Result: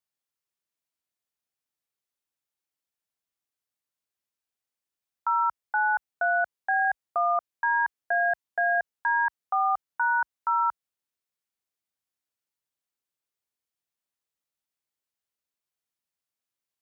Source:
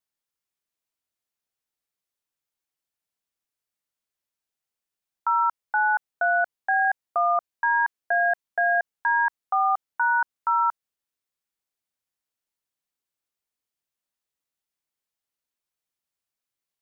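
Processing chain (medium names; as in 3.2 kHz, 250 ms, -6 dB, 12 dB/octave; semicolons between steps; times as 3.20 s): high-pass 46 Hz 24 dB/octave; trim -2.5 dB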